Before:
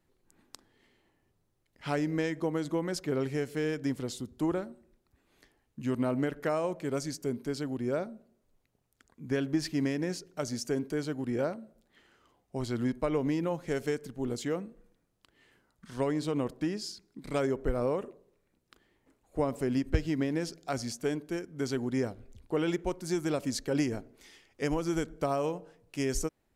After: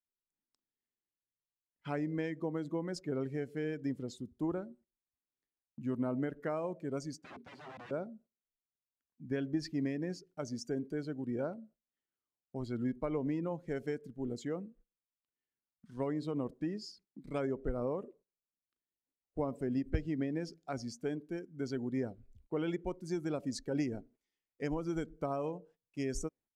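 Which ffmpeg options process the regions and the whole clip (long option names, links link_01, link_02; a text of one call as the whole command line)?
ffmpeg -i in.wav -filter_complex "[0:a]asettb=1/sr,asplit=3[link_01][link_02][link_03];[link_01]atrim=end=7.204[link_04];[link_02]atrim=start=7.2:end=7.91,asetpts=PTS-STARTPTS,afade=type=in:duration=0.004:curve=qsin,afade=type=out:start_time=0.706:duration=0.004:curve=qsin,aeval=exprs='(mod(59.6*val(0)+1,2)-1)/59.6':channel_layout=same,highpass=100,lowpass=4600[link_05];[link_03]atrim=start=7.906[link_06];[link_04][link_05]acrossfade=duration=0.004:curve1=hsin:curve2=qsin[link_07];[link_07][link_06]acrossfade=duration=0.004:curve1=qsin:curve2=hsin,afftdn=noise_reduction=13:noise_floor=-41,agate=range=-16dB:threshold=-56dB:ratio=16:detection=peak,equalizer=frequency=210:width=1.3:gain=3,volume=-6.5dB" out.wav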